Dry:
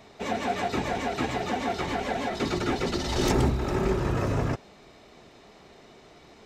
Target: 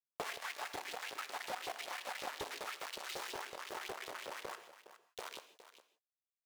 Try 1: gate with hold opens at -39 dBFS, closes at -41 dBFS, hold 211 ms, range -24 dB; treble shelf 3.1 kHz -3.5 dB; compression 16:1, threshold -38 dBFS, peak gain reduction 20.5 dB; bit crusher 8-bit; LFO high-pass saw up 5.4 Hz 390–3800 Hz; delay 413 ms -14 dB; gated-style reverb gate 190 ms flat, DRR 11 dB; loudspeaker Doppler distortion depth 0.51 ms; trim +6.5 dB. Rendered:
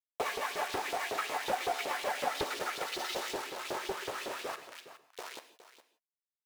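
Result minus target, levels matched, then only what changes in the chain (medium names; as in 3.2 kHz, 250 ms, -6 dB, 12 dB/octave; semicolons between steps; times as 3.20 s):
compression: peak gain reduction -10.5 dB
change: compression 16:1, threshold -49 dBFS, peak gain reduction 30.5 dB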